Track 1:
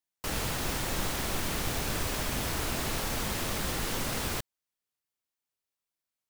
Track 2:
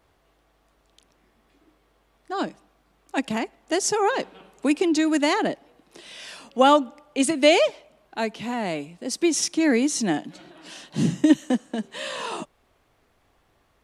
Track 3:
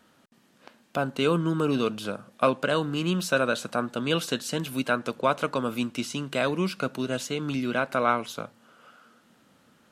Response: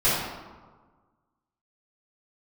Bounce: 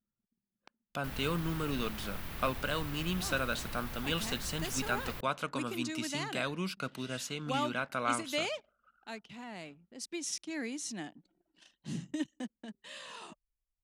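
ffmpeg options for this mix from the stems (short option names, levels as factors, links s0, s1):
-filter_complex "[0:a]equalizer=f=7000:w=0.72:g=-14,adelay=800,volume=0.473[s0];[1:a]adelay=900,volume=0.237[s1];[2:a]volume=0.596[s2];[s0][s1][s2]amix=inputs=3:normalize=0,anlmdn=0.00251,equalizer=f=450:w=0.5:g=-8"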